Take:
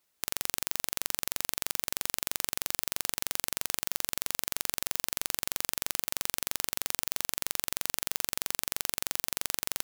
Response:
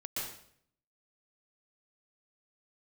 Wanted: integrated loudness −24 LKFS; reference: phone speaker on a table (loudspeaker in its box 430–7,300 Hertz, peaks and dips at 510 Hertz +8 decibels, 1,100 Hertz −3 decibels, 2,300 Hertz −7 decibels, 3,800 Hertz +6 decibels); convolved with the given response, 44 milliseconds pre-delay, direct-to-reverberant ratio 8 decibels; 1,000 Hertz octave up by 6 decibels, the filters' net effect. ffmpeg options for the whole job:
-filter_complex "[0:a]equalizer=frequency=1000:width_type=o:gain=9,asplit=2[link_01][link_02];[1:a]atrim=start_sample=2205,adelay=44[link_03];[link_02][link_03]afir=irnorm=-1:irlink=0,volume=-10dB[link_04];[link_01][link_04]amix=inputs=2:normalize=0,highpass=frequency=430:width=0.5412,highpass=frequency=430:width=1.3066,equalizer=frequency=510:width_type=q:width=4:gain=8,equalizer=frequency=1100:width_type=q:width=4:gain=-3,equalizer=frequency=2300:width_type=q:width=4:gain=-7,equalizer=frequency=3800:width_type=q:width=4:gain=6,lowpass=frequency=7300:width=0.5412,lowpass=frequency=7300:width=1.3066,volume=10dB"

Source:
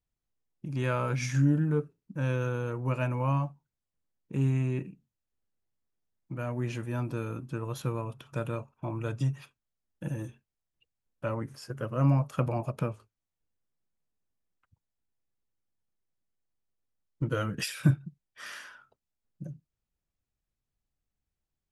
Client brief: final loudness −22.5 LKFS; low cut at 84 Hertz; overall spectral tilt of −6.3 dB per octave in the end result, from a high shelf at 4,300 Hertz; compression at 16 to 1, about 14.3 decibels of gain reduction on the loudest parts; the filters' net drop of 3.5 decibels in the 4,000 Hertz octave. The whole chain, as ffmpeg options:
ffmpeg -i in.wav -af "highpass=84,equalizer=frequency=4000:width_type=o:gain=-8.5,highshelf=frequency=4300:gain=5,acompressor=threshold=-31dB:ratio=16,volume=15.5dB" out.wav

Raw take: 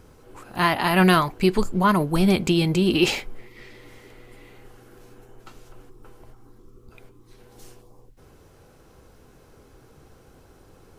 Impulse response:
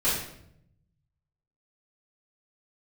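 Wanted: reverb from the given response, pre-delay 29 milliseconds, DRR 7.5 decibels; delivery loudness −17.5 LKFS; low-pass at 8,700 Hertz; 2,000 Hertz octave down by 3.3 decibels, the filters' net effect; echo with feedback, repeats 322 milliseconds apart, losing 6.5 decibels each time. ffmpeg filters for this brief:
-filter_complex "[0:a]lowpass=8700,equalizer=frequency=2000:width_type=o:gain=-4.5,aecho=1:1:322|644|966|1288|1610|1932:0.473|0.222|0.105|0.0491|0.0231|0.0109,asplit=2[link_01][link_02];[1:a]atrim=start_sample=2205,adelay=29[link_03];[link_02][link_03]afir=irnorm=-1:irlink=0,volume=-19.5dB[link_04];[link_01][link_04]amix=inputs=2:normalize=0,volume=2dB"

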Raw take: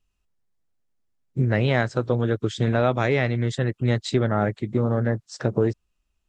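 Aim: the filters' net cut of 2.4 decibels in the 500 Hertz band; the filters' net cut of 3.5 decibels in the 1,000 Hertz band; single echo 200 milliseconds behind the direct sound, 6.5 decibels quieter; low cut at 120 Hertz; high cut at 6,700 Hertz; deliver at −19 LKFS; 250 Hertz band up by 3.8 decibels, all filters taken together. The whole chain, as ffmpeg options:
ffmpeg -i in.wav -af "highpass=120,lowpass=6700,equalizer=frequency=250:width_type=o:gain=6,equalizer=frequency=500:width_type=o:gain=-4,equalizer=frequency=1000:width_type=o:gain=-4,aecho=1:1:200:0.473,volume=4dB" out.wav

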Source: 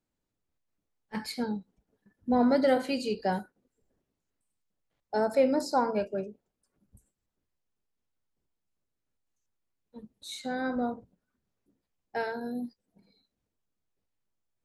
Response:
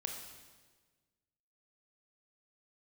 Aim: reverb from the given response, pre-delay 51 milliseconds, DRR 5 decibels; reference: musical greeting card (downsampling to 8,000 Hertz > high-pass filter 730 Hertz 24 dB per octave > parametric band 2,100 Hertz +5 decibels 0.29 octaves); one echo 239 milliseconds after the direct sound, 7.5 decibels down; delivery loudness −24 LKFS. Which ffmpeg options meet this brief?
-filter_complex "[0:a]aecho=1:1:239:0.422,asplit=2[link_01][link_02];[1:a]atrim=start_sample=2205,adelay=51[link_03];[link_02][link_03]afir=irnorm=-1:irlink=0,volume=-4.5dB[link_04];[link_01][link_04]amix=inputs=2:normalize=0,aresample=8000,aresample=44100,highpass=frequency=730:width=0.5412,highpass=frequency=730:width=1.3066,equalizer=frequency=2100:width_type=o:width=0.29:gain=5,volume=11dB"

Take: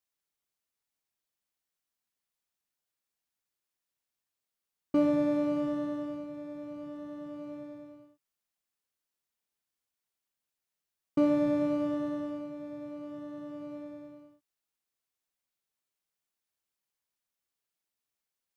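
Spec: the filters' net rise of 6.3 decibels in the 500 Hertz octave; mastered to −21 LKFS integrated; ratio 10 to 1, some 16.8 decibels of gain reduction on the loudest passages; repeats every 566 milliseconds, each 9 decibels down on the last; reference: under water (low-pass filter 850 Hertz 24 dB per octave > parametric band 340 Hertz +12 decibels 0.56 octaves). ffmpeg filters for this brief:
ffmpeg -i in.wav -af "equalizer=frequency=500:width_type=o:gain=6,acompressor=threshold=-36dB:ratio=10,lowpass=frequency=850:width=0.5412,lowpass=frequency=850:width=1.3066,equalizer=frequency=340:width_type=o:width=0.56:gain=12,aecho=1:1:566|1132|1698|2264:0.355|0.124|0.0435|0.0152,volume=14dB" out.wav

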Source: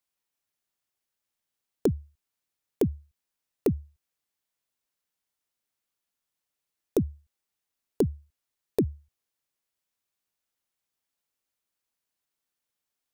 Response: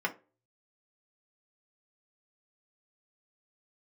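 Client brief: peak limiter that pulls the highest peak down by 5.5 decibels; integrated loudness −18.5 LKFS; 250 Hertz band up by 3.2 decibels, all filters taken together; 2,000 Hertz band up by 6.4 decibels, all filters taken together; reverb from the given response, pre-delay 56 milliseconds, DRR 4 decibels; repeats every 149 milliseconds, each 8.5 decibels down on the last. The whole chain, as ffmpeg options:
-filter_complex "[0:a]equalizer=frequency=250:width_type=o:gain=4,equalizer=frequency=2000:width_type=o:gain=8,alimiter=limit=-16dB:level=0:latency=1,aecho=1:1:149|298|447|596:0.376|0.143|0.0543|0.0206,asplit=2[link_01][link_02];[1:a]atrim=start_sample=2205,adelay=56[link_03];[link_02][link_03]afir=irnorm=-1:irlink=0,volume=-11.5dB[link_04];[link_01][link_04]amix=inputs=2:normalize=0,volume=13dB"

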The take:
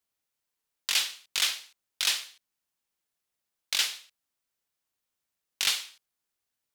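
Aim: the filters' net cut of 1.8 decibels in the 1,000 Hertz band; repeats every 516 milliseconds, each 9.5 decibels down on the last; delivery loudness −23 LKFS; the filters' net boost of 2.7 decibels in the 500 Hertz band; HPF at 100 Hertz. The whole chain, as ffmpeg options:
ffmpeg -i in.wav -af "highpass=100,equalizer=frequency=500:width_type=o:gain=4.5,equalizer=frequency=1000:width_type=o:gain=-3.5,aecho=1:1:516|1032|1548|2064:0.335|0.111|0.0365|0.012,volume=7dB" out.wav

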